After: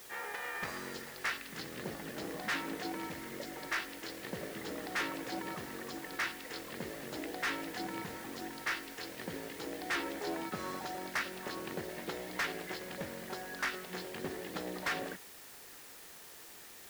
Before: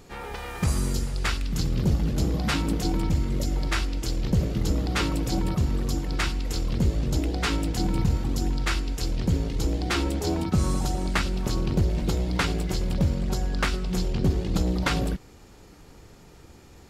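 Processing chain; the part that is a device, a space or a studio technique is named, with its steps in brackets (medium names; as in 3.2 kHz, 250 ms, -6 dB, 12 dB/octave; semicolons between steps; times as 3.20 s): drive-through speaker (band-pass 420–3700 Hz; peaking EQ 1.8 kHz +10.5 dB 0.43 oct; hard clipper -24 dBFS, distortion -8 dB; white noise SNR 12 dB); trim -6 dB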